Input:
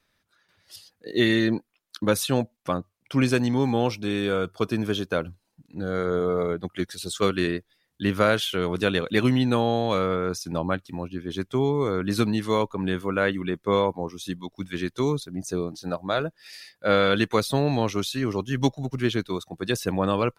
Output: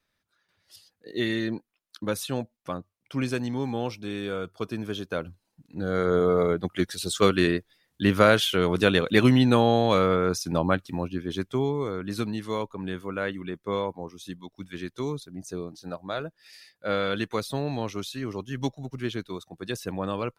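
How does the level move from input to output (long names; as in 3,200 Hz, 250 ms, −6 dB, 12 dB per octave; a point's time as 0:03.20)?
0:04.88 −6.5 dB
0:06.17 +2.5 dB
0:11.10 +2.5 dB
0:12.00 −6.5 dB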